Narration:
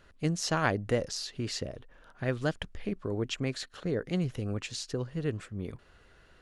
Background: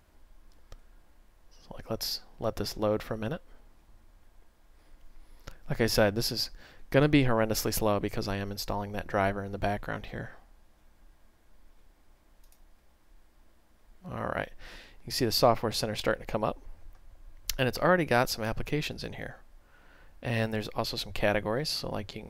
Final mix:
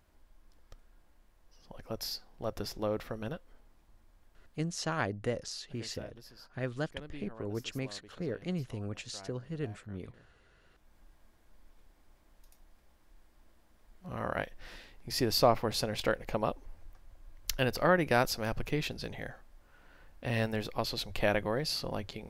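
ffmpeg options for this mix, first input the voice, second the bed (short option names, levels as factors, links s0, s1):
-filter_complex "[0:a]adelay=4350,volume=0.562[s0];[1:a]volume=7.08,afade=t=out:st=4.53:d=0.38:silence=0.112202,afade=t=in:st=10.54:d=0.41:silence=0.0794328[s1];[s0][s1]amix=inputs=2:normalize=0"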